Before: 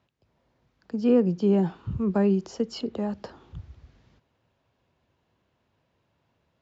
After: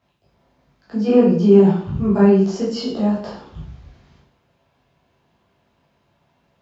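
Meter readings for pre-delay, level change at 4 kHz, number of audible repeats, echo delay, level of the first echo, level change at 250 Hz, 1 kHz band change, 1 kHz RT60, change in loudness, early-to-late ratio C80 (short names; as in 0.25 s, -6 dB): 7 ms, +8.5 dB, none, none, none, +9.0 dB, +9.5 dB, 0.55 s, +9.0 dB, 8.0 dB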